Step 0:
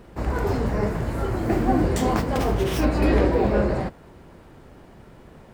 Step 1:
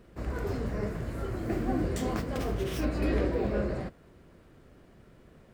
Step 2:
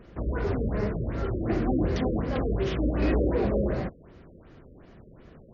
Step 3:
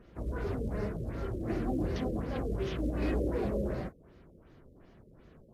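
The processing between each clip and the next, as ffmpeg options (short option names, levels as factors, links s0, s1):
-af "equalizer=f=870:w=3.6:g=-8.5,volume=0.376"
-af "asoftclip=type=tanh:threshold=0.0841,afftfilt=real='re*lt(b*sr/1024,570*pow(7100/570,0.5+0.5*sin(2*PI*2.7*pts/sr)))':imag='im*lt(b*sr/1024,570*pow(7100/570,0.5+0.5*sin(2*PI*2.7*pts/sr)))':win_size=1024:overlap=0.75,volume=1.88"
-af "acrusher=bits=9:mode=log:mix=0:aa=0.000001,volume=0.473" -ar 48000 -c:a libvorbis -b:a 32k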